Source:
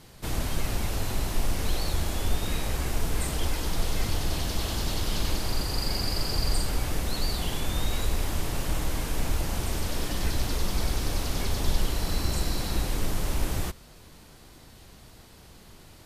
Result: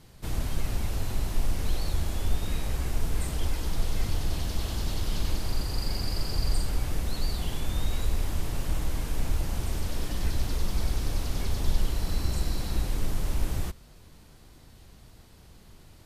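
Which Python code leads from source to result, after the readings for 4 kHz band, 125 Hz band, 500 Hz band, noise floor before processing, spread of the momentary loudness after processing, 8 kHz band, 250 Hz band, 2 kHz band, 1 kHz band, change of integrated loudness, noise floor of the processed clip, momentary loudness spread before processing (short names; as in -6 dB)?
-5.5 dB, 0.0 dB, -4.5 dB, -51 dBFS, 2 LU, -5.5 dB, -3.0 dB, -5.5 dB, -5.0 dB, -2.0 dB, -52 dBFS, 3 LU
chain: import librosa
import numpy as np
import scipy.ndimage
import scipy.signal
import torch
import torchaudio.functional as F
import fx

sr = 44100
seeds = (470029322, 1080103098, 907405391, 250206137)

y = fx.low_shelf(x, sr, hz=180.0, db=6.5)
y = F.gain(torch.from_numpy(y), -5.5).numpy()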